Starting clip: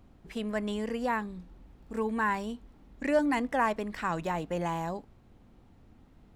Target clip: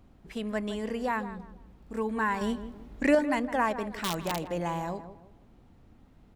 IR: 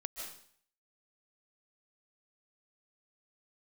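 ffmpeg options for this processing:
-filter_complex "[0:a]asettb=1/sr,asplit=3[link_01][link_02][link_03];[link_01]atrim=end=2.414[link_04];[link_02]atrim=start=2.41:end=3.15,asetpts=PTS-STARTPTS,afade=type=in:duration=0.004:curve=qsin,afade=type=out:start_time=0.736:duration=0.004:curve=qsin,acontrast=66[link_05];[link_03]atrim=start=3.146[link_06];[link_04][link_05]acrossfade=duration=0.004:curve1=hsin:curve2=qsin[link_07];[link_07][link_06]acrossfade=duration=0.004:curve1=qsin:curve2=hsin,asettb=1/sr,asplit=3[link_08][link_09][link_10];[link_08]atrim=end=3.854[link_11];[link_09]atrim=start=3.85:end=4.44,asetpts=PTS-STARTPTS,afade=type=in:duration=0.004:curve=qsin,afade=type=out:start_time=0.586:duration=0.004:curve=qsin,aeval=exprs='(mod(13.3*val(0)+1,2)-1)/13.3':channel_layout=same[link_12];[link_10]atrim=start=4.436[link_13];[link_11][link_12]acrossfade=duration=0.004:curve1=hsin:curve2=qsin[link_14];[link_14][link_13]acrossfade=duration=0.004:curve1=qsin:curve2=hsin,asplit=2[link_15][link_16];[link_16]adelay=161,lowpass=frequency=1400:poles=1,volume=-11dB,asplit=2[link_17][link_18];[link_18]adelay=161,lowpass=frequency=1400:poles=1,volume=0.35,asplit=2[link_19][link_20];[link_20]adelay=161,lowpass=frequency=1400:poles=1,volume=0.35,asplit=2[link_21][link_22];[link_22]adelay=161,lowpass=frequency=1400:poles=1,volume=0.35[link_23];[link_15][link_17][link_19][link_21][link_23]amix=inputs=5:normalize=0"

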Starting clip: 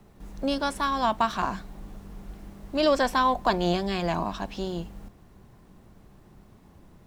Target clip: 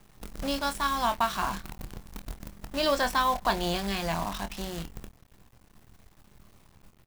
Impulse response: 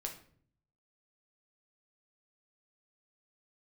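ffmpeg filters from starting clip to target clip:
-filter_complex "[0:a]equalizer=frequency=360:width=0.65:gain=-7.5,acrusher=bits=7:dc=4:mix=0:aa=0.000001,asplit=2[link_01][link_02];[link_02]adelay=25,volume=-9dB[link_03];[link_01][link_03]amix=inputs=2:normalize=0"

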